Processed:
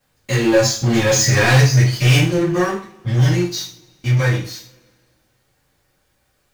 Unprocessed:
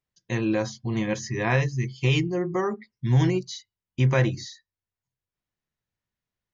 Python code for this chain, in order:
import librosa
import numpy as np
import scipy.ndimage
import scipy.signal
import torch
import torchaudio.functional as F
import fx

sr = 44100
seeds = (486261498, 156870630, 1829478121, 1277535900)

y = fx.doppler_pass(x, sr, speed_mps=15, closest_m=8.6, pass_at_s=1.31)
y = scipy.signal.sosfilt(scipy.signal.butter(2, 55.0, 'highpass', fs=sr, output='sos'), y)
y = fx.high_shelf(y, sr, hz=3100.0, db=11.5)
y = fx.leveller(y, sr, passes=5)
y = fx.dmg_noise_colour(y, sr, seeds[0], colour='pink', level_db=-62.0)
y = fx.rev_double_slope(y, sr, seeds[1], early_s=0.4, late_s=2.0, knee_db=-27, drr_db=-9.5)
y = y * 10.0 ** (-11.5 / 20.0)